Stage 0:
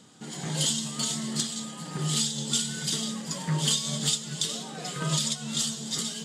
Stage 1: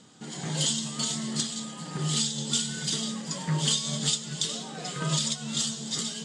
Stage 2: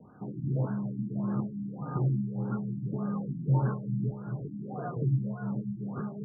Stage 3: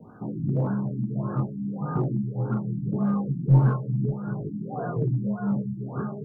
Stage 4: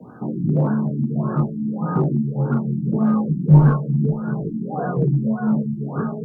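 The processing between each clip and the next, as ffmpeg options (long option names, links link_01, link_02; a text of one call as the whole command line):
ffmpeg -i in.wav -af "lowpass=frequency=9000:width=0.5412,lowpass=frequency=9000:width=1.3066" out.wav
ffmpeg -i in.wav -af "afreqshift=-20,afftfilt=real='re*lt(b*sr/1024,320*pow(1700/320,0.5+0.5*sin(2*PI*1.7*pts/sr)))':imag='im*lt(b*sr/1024,320*pow(1700/320,0.5+0.5*sin(2*PI*1.7*pts/sr)))':win_size=1024:overlap=0.75,volume=3dB" out.wav
ffmpeg -i in.wav -filter_complex "[0:a]flanger=delay=17.5:depth=5.1:speed=0.41,asplit=2[link_01][link_02];[link_02]aeval=exprs='clip(val(0),-1,0.0355)':channel_layout=same,volume=-4.5dB[link_03];[link_01][link_03]amix=inputs=2:normalize=0,volume=5.5dB" out.wav
ffmpeg -i in.wav -af "afreqshift=15,volume=6.5dB" out.wav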